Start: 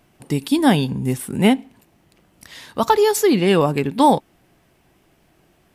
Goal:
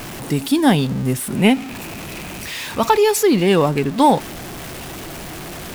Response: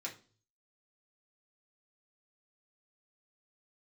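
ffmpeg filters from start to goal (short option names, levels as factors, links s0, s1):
-filter_complex "[0:a]aeval=exprs='val(0)+0.5*0.0501*sgn(val(0))':c=same,asettb=1/sr,asplit=3[s0][s1][s2];[s0]atrim=end=1.364[s3];[s1]atrim=start=1.36:end=3.18,asetpts=PTS-STARTPTS,afade=t=in:d=0.004:c=qsin,afade=t=out:st=1.816:d=0.004:c=qsin,equalizer=f=2500:w=5.8:g=9[s4];[s2]atrim=start=3.176[s5];[s3][s4]acrossfade=d=0.004:c1=hsin:c2=qsin[s6];[s6][s5]acrossfade=d=0.004:c1=qsin:c2=hsin"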